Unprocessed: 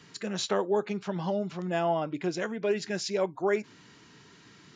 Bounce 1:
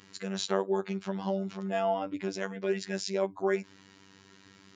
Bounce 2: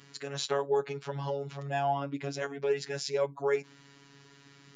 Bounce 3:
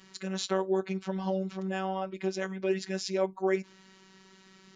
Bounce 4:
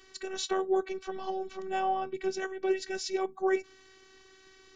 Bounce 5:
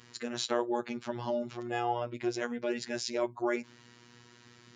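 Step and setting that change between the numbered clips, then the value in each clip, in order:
robotiser, frequency: 97, 140, 190, 380, 120 Hz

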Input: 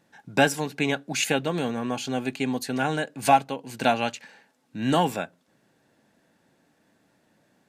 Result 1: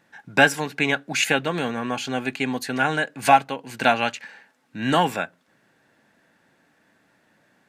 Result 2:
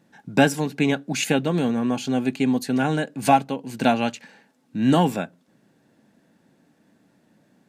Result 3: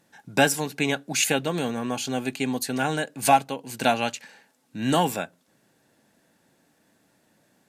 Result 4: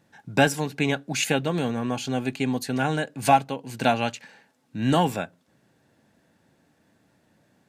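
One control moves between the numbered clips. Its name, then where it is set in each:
bell, frequency: 1700, 210, 13000, 83 Hz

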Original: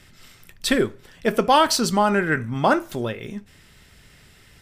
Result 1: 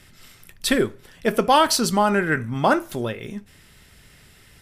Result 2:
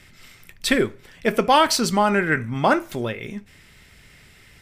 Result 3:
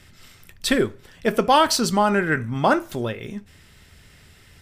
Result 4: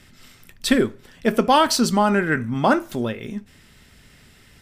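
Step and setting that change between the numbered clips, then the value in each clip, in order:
bell, frequency: 11000, 2200, 84, 240 Hz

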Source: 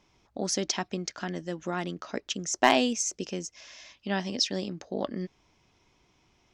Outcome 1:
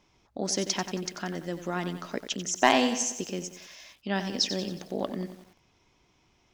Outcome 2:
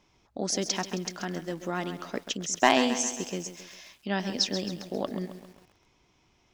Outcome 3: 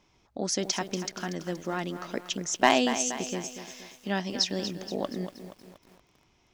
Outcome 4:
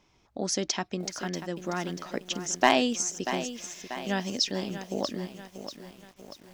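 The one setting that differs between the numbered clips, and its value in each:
lo-fi delay, time: 91, 134, 237, 638 ms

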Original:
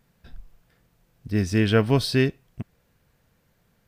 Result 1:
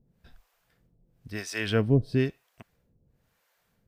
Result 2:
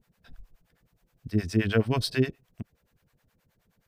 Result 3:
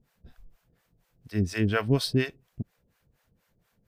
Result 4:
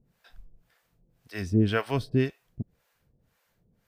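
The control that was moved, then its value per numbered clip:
harmonic tremolo, rate: 1, 9.5, 4.2, 1.9 Hz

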